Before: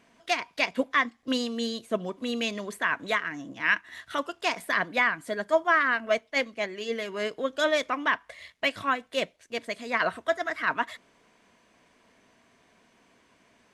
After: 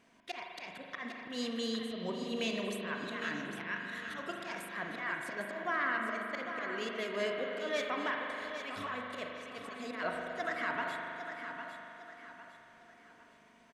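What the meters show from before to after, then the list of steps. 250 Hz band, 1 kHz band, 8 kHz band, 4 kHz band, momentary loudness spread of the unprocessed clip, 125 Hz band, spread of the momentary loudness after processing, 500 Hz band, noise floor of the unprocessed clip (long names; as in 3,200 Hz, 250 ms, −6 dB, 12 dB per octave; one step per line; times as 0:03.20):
−6.5 dB, −9.5 dB, −8.5 dB, −9.0 dB, 8 LU, −3.5 dB, 11 LU, −9.0 dB, −64 dBFS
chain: brickwall limiter −20.5 dBFS, peak gain reduction 10 dB
volume swells 131 ms
on a send: repeating echo 805 ms, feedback 37%, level −9 dB
on the sum: spring reverb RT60 3.1 s, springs 40 ms, chirp 45 ms, DRR 1 dB
level −5 dB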